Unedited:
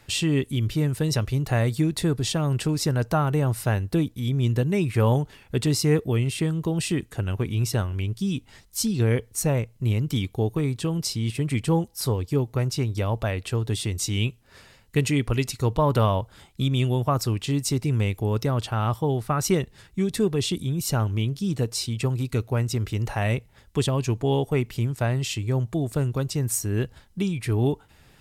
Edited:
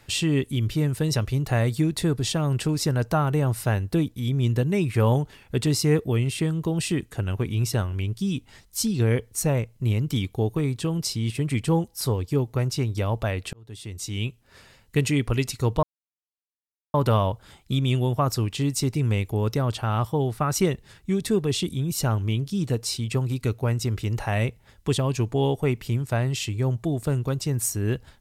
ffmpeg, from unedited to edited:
-filter_complex "[0:a]asplit=3[a][b][c];[a]atrim=end=13.53,asetpts=PTS-STARTPTS,afade=t=out:st=13.526:d=0.004:c=hsin[d];[b]atrim=start=13.53:end=15.83,asetpts=PTS-STARTPTS,afade=t=in:d=1.52:c=qsin,afade=t=out:st=2.296:d=0.004:c=hsin,apad=pad_dur=1.11[e];[c]atrim=start=15.83,asetpts=PTS-STARTPTS,afade=t=in:d=0.004:c=hsin[f];[d][e][f]concat=n=3:v=0:a=1"

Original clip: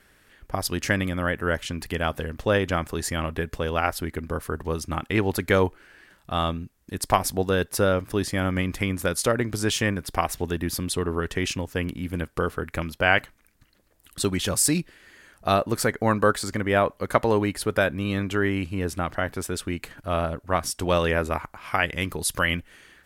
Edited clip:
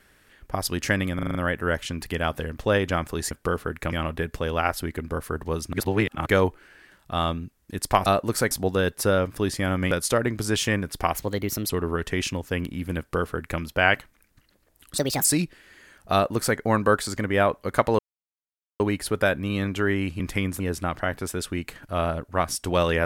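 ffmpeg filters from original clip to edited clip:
-filter_complex "[0:a]asplit=20[a][b][c][d][e][f][g][h][i][j][k][l][m][n][o][p][q][r][s][t];[a]atrim=end=1.192[u];[b]atrim=start=1.148:end=1.192[v];[c]atrim=start=1.148:end=1.192[w];[d]atrim=start=1.148:end=1.192[x];[e]atrim=start=1.148:end=1.192[y];[f]atrim=start=1.148:end=3.112[z];[g]atrim=start=12.228:end=12.842[aa];[h]atrim=start=3.108:end=4.922[ab];[i]atrim=start=4.918:end=5.452,asetpts=PTS-STARTPTS,areverse[ac];[j]atrim=start=5.448:end=7.252[ad];[k]atrim=start=15.488:end=15.942[ae];[l]atrim=start=7.248:end=8.652[af];[m]atrim=start=9.048:end=10.284[ag];[n]atrim=start=10.28:end=10.94,asetpts=PTS-STARTPTS,asetrate=52038,aresample=44100,atrim=end_sample=24666,asetpts=PTS-STARTPTS[ah];[o]atrim=start=10.936:end=14.224[ai];[p]atrim=start=14.22:end=14.61,asetpts=PTS-STARTPTS,asetrate=63945,aresample=44100,atrim=end_sample=11861,asetpts=PTS-STARTPTS[aj];[q]atrim=start=14.606:end=17.35,asetpts=PTS-STARTPTS,afade=t=out:st=2.74:d=0.004:c=hsin,apad=pad_dur=0.81[ak];[r]atrim=start=17.35:end=18.752,asetpts=PTS-STARTPTS,afade=t=in:d=0.004:c=hsin[al];[s]atrim=start=8.648:end=9.052[am];[t]atrim=start=18.748[an];[u][v]acrossfade=d=0.004:c1=hsin:c2=hsin[ao];[ao][w]acrossfade=d=0.004:c1=hsin:c2=hsin[ap];[ap][x]acrossfade=d=0.004:c1=hsin:c2=hsin[aq];[aq][y]acrossfade=d=0.004:c1=hsin:c2=hsin[ar];[ar][z]acrossfade=d=0.004:c1=hsin:c2=hsin[as];[as][aa]acrossfade=d=0.004:c1=hsin:c2=hsin[at];[at][ab]acrossfade=d=0.004:c1=hsin:c2=hsin[au];[au][ac]acrossfade=d=0.004:c1=hsin:c2=hsin[av];[av][ad]acrossfade=d=0.004:c1=hsin:c2=hsin[aw];[aw][ae]acrossfade=d=0.004:c1=hsin:c2=hsin[ax];[ax][af]acrossfade=d=0.004:c1=hsin:c2=hsin[ay];[ay][ag]acrossfade=d=0.004:c1=hsin:c2=hsin[az];[az][ah]acrossfade=d=0.004:c1=hsin:c2=hsin[ba];[ba][ai]acrossfade=d=0.004:c1=hsin:c2=hsin[bb];[bb][aj]acrossfade=d=0.004:c1=hsin:c2=hsin[bc];[ak][al]concat=n=2:v=0:a=1[bd];[bc][bd]acrossfade=d=0.004:c1=hsin:c2=hsin[be];[be][am]acrossfade=d=0.004:c1=hsin:c2=hsin[bf];[bf][an]acrossfade=d=0.004:c1=hsin:c2=hsin"

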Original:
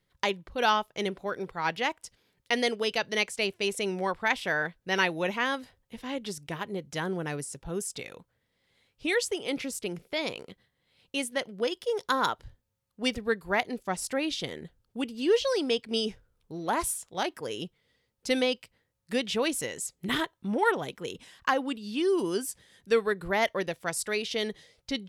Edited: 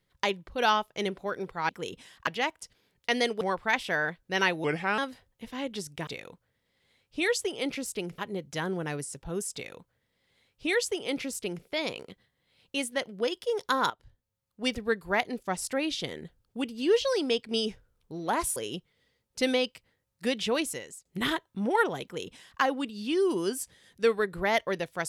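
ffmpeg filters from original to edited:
-filter_complex "[0:a]asplit=11[a][b][c][d][e][f][g][h][i][j][k];[a]atrim=end=1.692[l];[b]atrim=start=20.908:end=21.492[m];[c]atrim=start=1.688:end=2.832[n];[d]atrim=start=3.978:end=5.214[o];[e]atrim=start=5.21:end=5.49,asetpts=PTS-STARTPTS,asetrate=36162,aresample=44100[p];[f]atrim=start=5.486:end=6.582[q];[g]atrim=start=7.938:end=10.052[r];[h]atrim=start=6.578:end=12.3,asetpts=PTS-STARTPTS,afade=t=out:st=5.718:d=0.004:c=hsin:silence=0.199526[s];[i]atrim=start=12.3:end=16.962,asetpts=PTS-STARTPTS,afade=t=in:d=0.88:silence=0.199526[t];[j]atrim=start=17.438:end=19.93,asetpts=PTS-STARTPTS,afade=t=out:st=2.012:d=0.48:silence=0.0944061[u];[k]atrim=start=19.93,asetpts=PTS-STARTPTS,afade=t=in:d=0.004:c=hsin:silence=0.0944061[v];[l][m]acrossfade=d=0.004:c1=hsin:c2=hsin[w];[w][n]acrossfade=d=0.004:c1=hsin:c2=hsin[x];[x][o]acrossfade=d=0.004:c1=hsin:c2=hsin[y];[y][p]acrossfade=d=0.004:c1=hsin:c2=hsin[z];[z][q]acrossfade=d=0.004:c1=hsin:c2=hsin[aa];[aa][r]acrossfade=d=0.004:c1=hsin:c2=hsin[ab];[s][t]concat=n=2:v=0:a=1[ac];[ab][ac]acrossfade=d=0.004:c1=hsin:c2=hsin[ad];[u][v]concat=n=2:v=0:a=1[ae];[ad][ae]acrossfade=d=0.004:c1=hsin:c2=hsin"

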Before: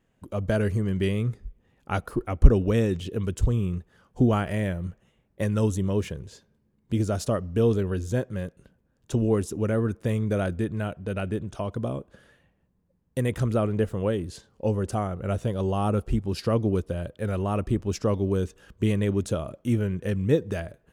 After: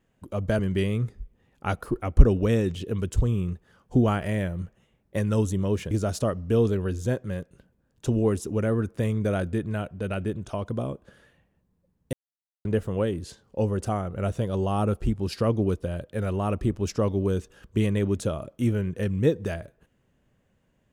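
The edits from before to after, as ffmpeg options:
-filter_complex "[0:a]asplit=5[a][b][c][d][e];[a]atrim=end=0.592[f];[b]atrim=start=0.838:end=6.162[g];[c]atrim=start=6.968:end=13.19,asetpts=PTS-STARTPTS,afade=t=out:st=6.218:d=0.004:c=hsin[h];[d]atrim=start=13.19:end=13.71,asetpts=PTS-STARTPTS,volume=0[i];[e]atrim=start=13.71,asetpts=PTS-STARTPTS,afade=t=in:d=0.004:c=hsin[j];[f][g]acrossfade=d=0.004:c1=hsin:c2=hsin[k];[h][i][j]concat=n=3:v=0:a=1[l];[k][l]acrossfade=d=0.004:c1=hsin:c2=hsin"

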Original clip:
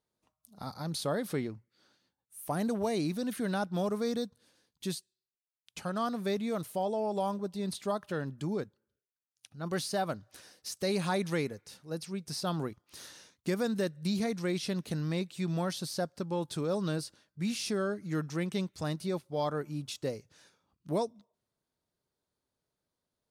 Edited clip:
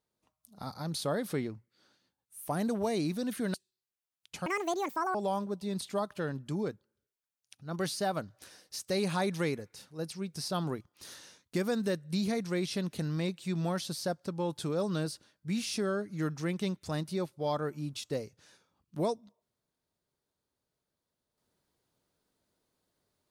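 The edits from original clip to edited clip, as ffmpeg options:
-filter_complex "[0:a]asplit=4[a][b][c][d];[a]atrim=end=3.542[e];[b]atrim=start=4.968:end=5.894[f];[c]atrim=start=5.89:end=7.07,asetpts=PTS-STARTPTS,asetrate=75852,aresample=44100[g];[d]atrim=start=7.066[h];[e][f]acrossfade=d=0.004:c1=hsin:c2=hsin[i];[i][g]acrossfade=d=0.004:c1=hsin:c2=hsin[j];[j][h]acrossfade=d=0.004:c1=hsin:c2=hsin"

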